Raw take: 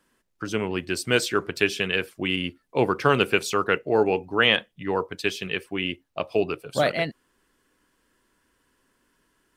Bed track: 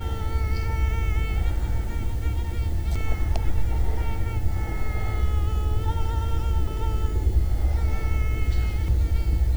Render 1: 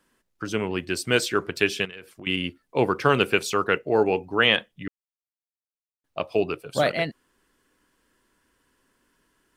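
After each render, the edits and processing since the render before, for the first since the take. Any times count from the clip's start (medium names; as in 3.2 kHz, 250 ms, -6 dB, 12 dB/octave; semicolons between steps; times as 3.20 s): 1.85–2.27 s: compression 4:1, threshold -40 dBFS; 4.88–6.04 s: mute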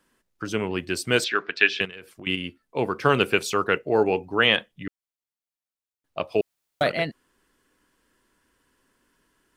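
1.24–1.81 s: cabinet simulation 340–5100 Hz, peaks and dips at 350 Hz -5 dB, 540 Hz -7 dB, 910 Hz -4 dB, 1.7 kHz +8 dB, 2.5 kHz +5 dB, 3.7 kHz +4 dB; 2.35–3.03 s: feedback comb 220 Hz, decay 0.17 s, mix 40%; 6.41–6.81 s: room tone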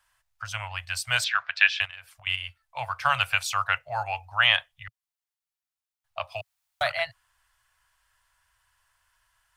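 inverse Chebyshev band-stop 170–450 Hz, stop band 40 dB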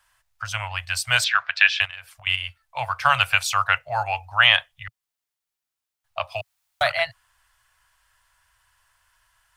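trim +5 dB; peak limiter -1 dBFS, peak gain reduction 3 dB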